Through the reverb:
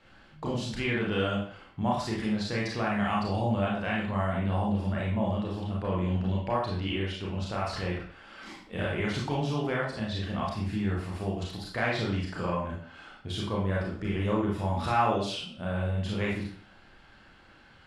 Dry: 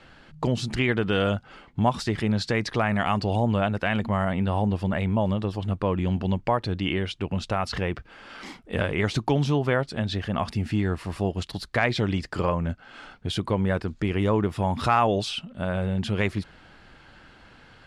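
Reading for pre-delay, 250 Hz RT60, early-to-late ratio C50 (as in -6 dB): 27 ms, 0.50 s, 2.5 dB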